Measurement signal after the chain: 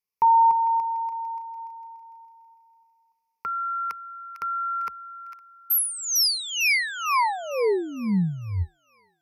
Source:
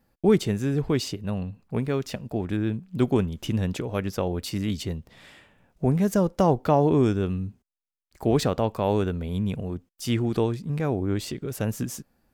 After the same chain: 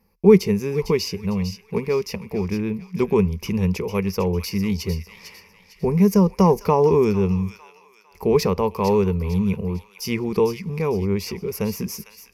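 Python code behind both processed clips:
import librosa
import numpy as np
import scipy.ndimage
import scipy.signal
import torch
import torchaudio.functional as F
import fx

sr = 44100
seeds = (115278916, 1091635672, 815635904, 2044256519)

p1 = fx.ripple_eq(x, sr, per_octave=0.83, db=15)
p2 = p1 + fx.echo_wet_highpass(p1, sr, ms=452, feedback_pct=37, hz=1600.0, wet_db=-8.5, dry=0)
y = F.gain(torch.from_numpy(p2), 1.0).numpy()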